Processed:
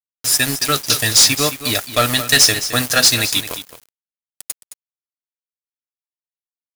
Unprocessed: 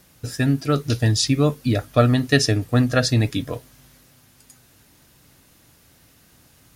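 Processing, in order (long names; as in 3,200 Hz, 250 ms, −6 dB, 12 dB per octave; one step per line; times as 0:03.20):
first-order pre-emphasis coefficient 0.97
leveller curve on the samples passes 5
centre clipping without the shift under −25.5 dBFS
on a send: single-tap delay 217 ms −12.5 dB
on the sum: level +4.5 dB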